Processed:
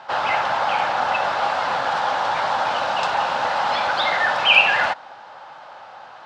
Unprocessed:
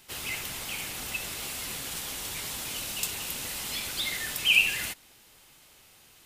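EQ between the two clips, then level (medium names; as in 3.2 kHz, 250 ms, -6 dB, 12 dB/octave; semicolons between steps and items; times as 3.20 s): cabinet simulation 120–4600 Hz, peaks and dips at 530 Hz +8 dB, 840 Hz +8 dB, 1.7 kHz +3 dB; high-order bell 970 Hz +16 dB; +6.5 dB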